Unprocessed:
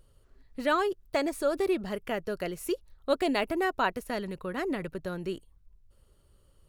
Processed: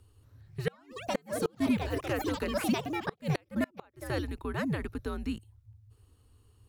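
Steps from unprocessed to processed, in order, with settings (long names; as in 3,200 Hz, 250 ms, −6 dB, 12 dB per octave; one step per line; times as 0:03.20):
frequency shifter −120 Hz
delay with pitch and tempo change per echo 228 ms, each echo +5 semitones, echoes 3, each echo −6 dB
gate with flip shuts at −17 dBFS, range −34 dB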